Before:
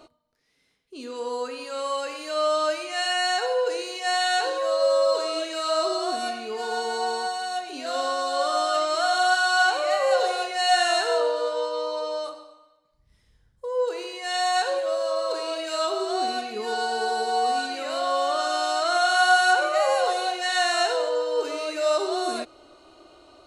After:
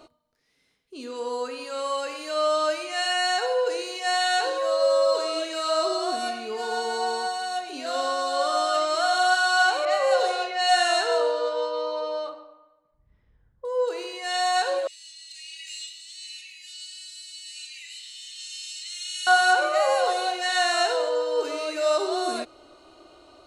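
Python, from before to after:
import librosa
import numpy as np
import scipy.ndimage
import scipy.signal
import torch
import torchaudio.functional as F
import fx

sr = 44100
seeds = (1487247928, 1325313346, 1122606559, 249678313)

y = fx.env_lowpass(x, sr, base_hz=1600.0, full_db=-17.5, at=(9.85, 13.65))
y = fx.cheby_ripple_highpass(y, sr, hz=1900.0, ripple_db=6, at=(14.87, 19.27))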